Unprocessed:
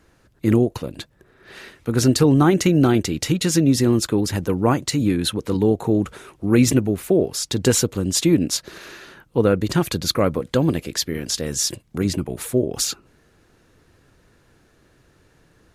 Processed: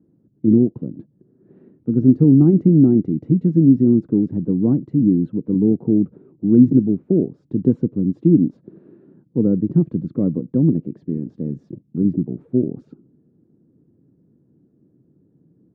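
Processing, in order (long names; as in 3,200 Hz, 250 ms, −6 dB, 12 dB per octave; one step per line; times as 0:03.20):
flat-topped band-pass 210 Hz, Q 1.2
level +6 dB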